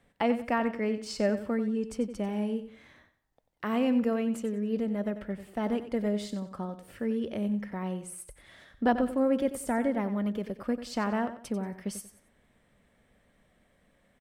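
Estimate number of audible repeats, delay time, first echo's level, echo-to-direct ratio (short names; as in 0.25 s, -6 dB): 3, 92 ms, -12.0 dB, -11.5 dB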